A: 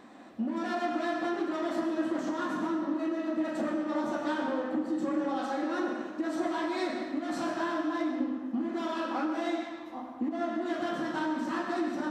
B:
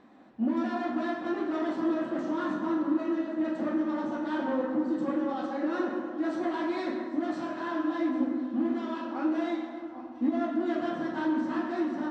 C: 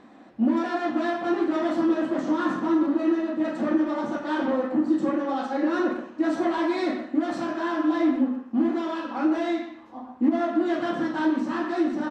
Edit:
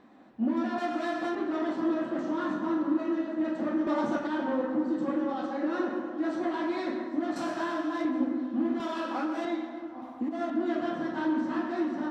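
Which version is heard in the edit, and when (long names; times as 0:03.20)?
B
0:00.78–0:01.35: punch in from A
0:03.87–0:04.27: punch in from C
0:07.36–0:08.05: punch in from A
0:08.80–0:09.45: punch in from A
0:10.02–0:10.50: punch in from A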